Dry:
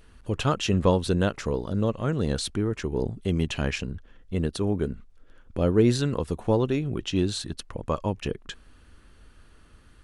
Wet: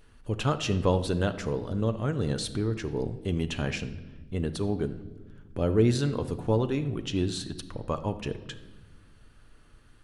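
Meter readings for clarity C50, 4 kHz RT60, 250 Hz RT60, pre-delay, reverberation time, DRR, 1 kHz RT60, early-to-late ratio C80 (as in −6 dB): 13.0 dB, 0.95 s, 2.0 s, 7 ms, 1.2 s, 8.5 dB, 1.0 s, 15.0 dB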